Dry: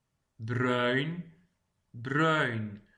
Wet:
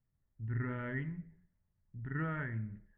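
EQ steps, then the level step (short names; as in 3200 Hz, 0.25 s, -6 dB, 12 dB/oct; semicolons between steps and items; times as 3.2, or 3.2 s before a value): tilt -4.5 dB/oct; dynamic EQ 470 Hz, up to -6 dB, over -34 dBFS, Q 0.8; ladder low-pass 2200 Hz, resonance 60%; -5.0 dB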